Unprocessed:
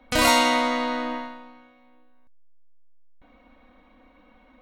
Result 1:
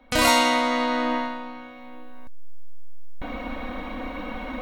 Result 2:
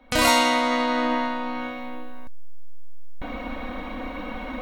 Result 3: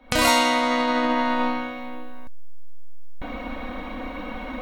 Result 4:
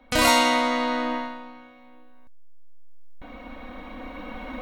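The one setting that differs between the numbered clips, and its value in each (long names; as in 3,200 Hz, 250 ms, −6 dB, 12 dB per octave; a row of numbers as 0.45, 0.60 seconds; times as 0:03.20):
camcorder AGC, rising by: 13, 32, 84, 5.2 dB per second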